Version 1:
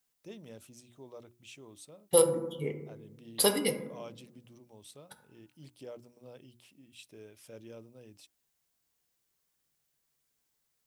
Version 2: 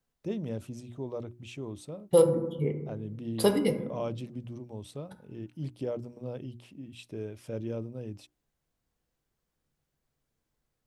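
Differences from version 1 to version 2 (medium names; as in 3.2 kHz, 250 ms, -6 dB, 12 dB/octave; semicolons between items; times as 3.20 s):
first voice +8.5 dB; master: add tilt EQ -3 dB/octave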